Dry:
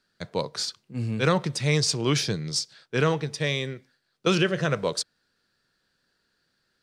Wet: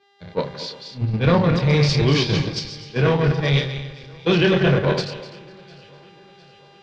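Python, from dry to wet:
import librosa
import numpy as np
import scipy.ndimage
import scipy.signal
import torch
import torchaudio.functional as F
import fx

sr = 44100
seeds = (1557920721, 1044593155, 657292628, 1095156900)

p1 = fx.reverse_delay_fb(x, sr, ms=126, feedback_pct=57, wet_db=-4.0)
p2 = fx.low_shelf(p1, sr, hz=110.0, db=9.5)
p3 = fx.dmg_buzz(p2, sr, base_hz=400.0, harmonics=28, level_db=-46.0, tilt_db=-4, odd_only=False)
p4 = fx.doubler(p3, sr, ms=29.0, db=-6.0)
p5 = fx.echo_alternate(p4, sr, ms=352, hz=1900.0, feedback_pct=70, wet_db=-12.5)
p6 = fx.level_steps(p5, sr, step_db=23)
p7 = p5 + (p6 * 10.0 ** (1.0 / 20.0))
p8 = fx.notch(p7, sr, hz=1300.0, q=6.6)
p9 = fx.power_curve(p8, sr, exponent=0.7)
p10 = scipy.signal.sosfilt(scipy.signal.butter(4, 4300.0, 'lowpass', fs=sr, output='sos'), p9)
p11 = fx.band_widen(p10, sr, depth_pct=100)
y = p11 * 10.0 ** (-5.5 / 20.0)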